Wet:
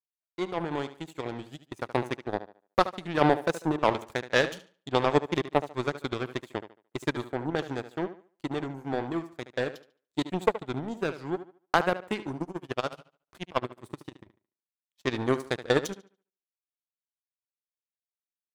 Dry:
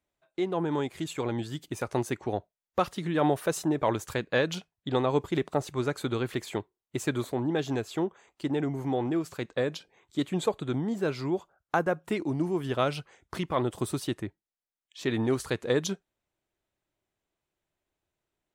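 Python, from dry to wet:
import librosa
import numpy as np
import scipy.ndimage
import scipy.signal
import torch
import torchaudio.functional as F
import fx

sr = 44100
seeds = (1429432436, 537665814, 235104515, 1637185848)

y = fx.tremolo(x, sr, hz=14.0, depth=0.79, at=(12.37, 15.04), fade=0.02)
y = fx.power_curve(y, sr, exponent=2.0)
y = fx.echo_tape(y, sr, ms=73, feedback_pct=31, wet_db=-12.0, lp_hz=5700.0, drive_db=14.0, wow_cents=12)
y = F.gain(torch.from_numpy(y), 8.0).numpy()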